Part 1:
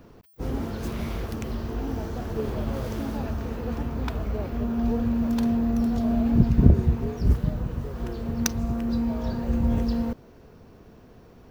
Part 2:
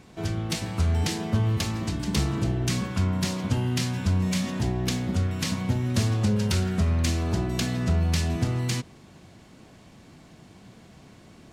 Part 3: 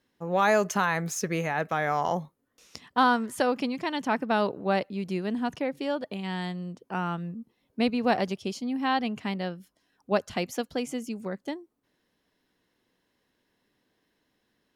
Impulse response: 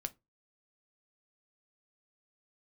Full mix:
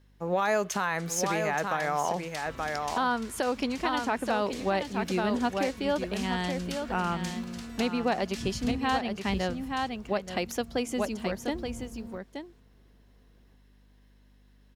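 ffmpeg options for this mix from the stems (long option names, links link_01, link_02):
-filter_complex "[0:a]adelay=2050,volume=-18dB[link_01];[1:a]highpass=frequency=1100:width=0.5412,highpass=frequency=1100:width=1.3066,adelay=200,volume=-9.5dB,asplit=2[link_02][link_03];[link_03]volume=-7.5dB[link_04];[2:a]highpass=frequency=190:poles=1,aeval=exprs='val(0)+0.000794*(sin(2*PI*50*n/s)+sin(2*PI*2*50*n/s)/2+sin(2*PI*3*50*n/s)/3+sin(2*PI*4*50*n/s)/4+sin(2*PI*5*50*n/s)/5)':channel_layout=same,volume=3dB,asplit=2[link_05][link_06];[link_06]volume=-7.5dB[link_07];[link_04][link_07]amix=inputs=2:normalize=0,aecho=0:1:876:1[link_08];[link_01][link_02][link_05][link_08]amix=inputs=4:normalize=0,alimiter=limit=-17dB:level=0:latency=1:release=332"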